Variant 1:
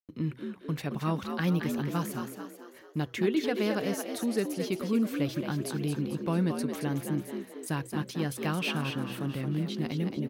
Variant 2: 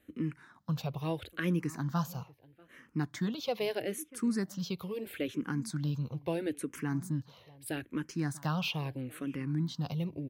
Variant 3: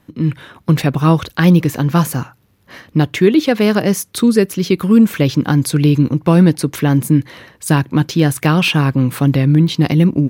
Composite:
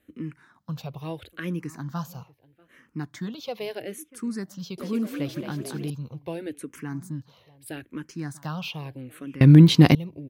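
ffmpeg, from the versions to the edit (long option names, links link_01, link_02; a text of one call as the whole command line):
ffmpeg -i take0.wav -i take1.wav -i take2.wav -filter_complex "[1:a]asplit=3[link_01][link_02][link_03];[link_01]atrim=end=4.782[link_04];[0:a]atrim=start=4.778:end=5.902[link_05];[link_02]atrim=start=5.898:end=9.412[link_06];[2:a]atrim=start=9.408:end=9.952[link_07];[link_03]atrim=start=9.948[link_08];[link_04][link_05]acrossfade=duration=0.004:curve1=hsin:curve2=hsin[link_09];[link_09][link_06]acrossfade=duration=0.004:curve1=hsin:curve2=hsin[link_10];[link_10][link_07]acrossfade=duration=0.004:curve1=hsin:curve2=hsin[link_11];[link_11][link_08]acrossfade=duration=0.004:curve1=hsin:curve2=hsin" out.wav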